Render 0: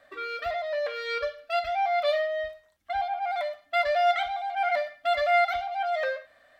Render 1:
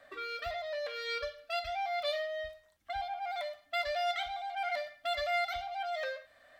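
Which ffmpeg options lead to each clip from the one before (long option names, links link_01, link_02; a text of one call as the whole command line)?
ffmpeg -i in.wav -filter_complex "[0:a]acrossover=split=140|3000[link_01][link_02][link_03];[link_02]acompressor=threshold=-51dB:ratio=1.5[link_04];[link_01][link_04][link_03]amix=inputs=3:normalize=0" out.wav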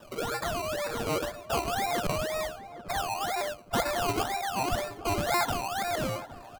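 ffmpeg -i in.wav -filter_complex "[0:a]acrossover=split=180|980|1900[link_01][link_02][link_03][link_04];[link_02]alimiter=level_in=14dB:limit=-24dB:level=0:latency=1,volume=-14dB[link_05];[link_01][link_05][link_03][link_04]amix=inputs=4:normalize=0,acrusher=samples=20:mix=1:aa=0.000001:lfo=1:lforange=12:lforate=2,asplit=2[link_06][link_07];[link_07]adelay=813,lowpass=frequency=1100:poles=1,volume=-13dB,asplit=2[link_08][link_09];[link_09]adelay=813,lowpass=frequency=1100:poles=1,volume=0.33,asplit=2[link_10][link_11];[link_11]adelay=813,lowpass=frequency=1100:poles=1,volume=0.33[link_12];[link_06][link_08][link_10][link_12]amix=inputs=4:normalize=0,volume=7.5dB" out.wav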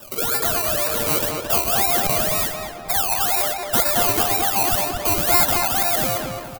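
ffmpeg -i in.wav -filter_complex "[0:a]aemphasis=mode=production:type=75fm,asplit=2[link_01][link_02];[link_02]adelay=220,lowpass=frequency=2700:poles=1,volume=-3dB,asplit=2[link_03][link_04];[link_04]adelay=220,lowpass=frequency=2700:poles=1,volume=0.39,asplit=2[link_05][link_06];[link_06]adelay=220,lowpass=frequency=2700:poles=1,volume=0.39,asplit=2[link_07][link_08];[link_08]adelay=220,lowpass=frequency=2700:poles=1,volume=0.39,asplit=2[link_09][link_10];[link_10]adelay=220,lowpass=frequency=2700:poles=1,volume=0.39[link_11];[link_01][link_03][link_05][link_07][link_09][link_11]amix=inputs=6:normalize=0,asoftclip=type=tanh:threshold=-5.5dB,volume=5dB" out.wav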